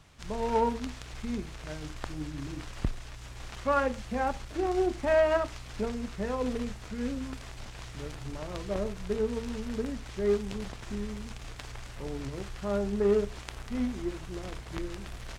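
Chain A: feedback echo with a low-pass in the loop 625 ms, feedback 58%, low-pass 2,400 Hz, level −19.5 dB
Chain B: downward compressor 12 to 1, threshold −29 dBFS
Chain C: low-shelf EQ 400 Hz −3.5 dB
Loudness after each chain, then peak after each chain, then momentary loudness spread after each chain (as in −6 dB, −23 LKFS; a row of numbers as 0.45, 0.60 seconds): −32.5, −37.0, −34.0 LKFS; −13.5, −13.5, −14.0 dBFS; 14, 8, 15 LU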